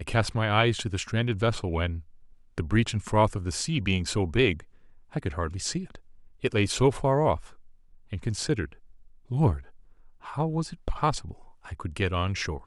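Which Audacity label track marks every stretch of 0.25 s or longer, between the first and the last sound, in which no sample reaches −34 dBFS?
2.000000	2.580000	silence
4.600000	5.160000	silence
5.950000	6.440000	silence
7.400000	8.130000	silence
8.720000	9.310000	silence
9.590000	10.270000	silence
11.330000	11.690000	silence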